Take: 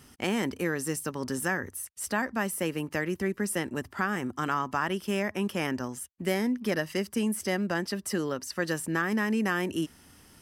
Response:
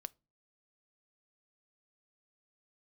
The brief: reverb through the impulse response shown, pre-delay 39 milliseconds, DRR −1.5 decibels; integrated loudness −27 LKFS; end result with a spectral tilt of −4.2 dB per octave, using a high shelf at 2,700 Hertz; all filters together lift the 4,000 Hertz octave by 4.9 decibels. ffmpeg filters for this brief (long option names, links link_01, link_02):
-filter_complex "[0:a]highshelf=frequency=2700:gain=3.5,equalizer=frequency=4000:width_type=o:gain=4,asplit=2[link_01][link_02];[1:a]atrim=start_sample=2205,adelay=39[link_03];[link_02][link_03]afir=irnorm=-1:irlink=0,volume=5.5dB[link_04];[link_01][link_04]amix=inputs=2:normalize=0,volume=-1.5dB"